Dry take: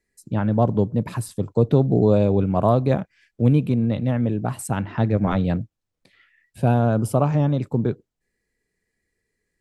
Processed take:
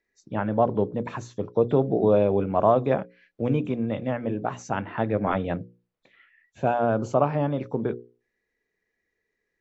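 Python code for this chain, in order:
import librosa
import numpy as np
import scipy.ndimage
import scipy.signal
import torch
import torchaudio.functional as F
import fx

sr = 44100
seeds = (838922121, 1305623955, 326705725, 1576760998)

y = fx.freq_compress(x, sr, knee_hz=3200.0, ratio=1.5)
y = fx.bass_treble(y, sr, bass_db=-11, treble_db=-13)
y = fx.hum_notches(y, sr, base_hz=60, count=9)
y = F.gain(torch.from_numpy(y), 1.0).numpy()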